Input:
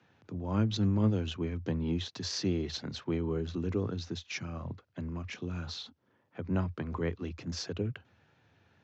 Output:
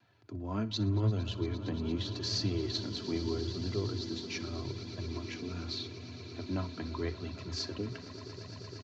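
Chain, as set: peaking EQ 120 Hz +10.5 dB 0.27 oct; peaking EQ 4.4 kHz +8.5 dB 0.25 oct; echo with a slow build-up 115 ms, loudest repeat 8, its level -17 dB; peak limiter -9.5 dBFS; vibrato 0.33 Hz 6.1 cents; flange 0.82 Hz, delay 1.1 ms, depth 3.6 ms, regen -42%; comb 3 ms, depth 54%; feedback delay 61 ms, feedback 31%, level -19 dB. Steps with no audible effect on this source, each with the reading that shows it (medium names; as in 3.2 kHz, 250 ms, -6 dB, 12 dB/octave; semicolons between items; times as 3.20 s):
peak limiter -9.5 dBFS: peak at its input -13.5 dBFS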